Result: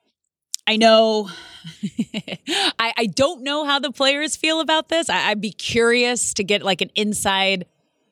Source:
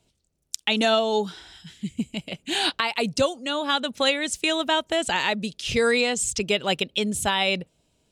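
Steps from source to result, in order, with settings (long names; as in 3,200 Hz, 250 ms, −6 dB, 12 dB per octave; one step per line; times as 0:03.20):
0:00.81–0:01.76: EQ curve with evenly spaced ripples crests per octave 1.9, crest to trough 12 dB
noise reduction from a noise print of the clip's start 21 dB
high-pass filter 88 Hz
level +4.5 dB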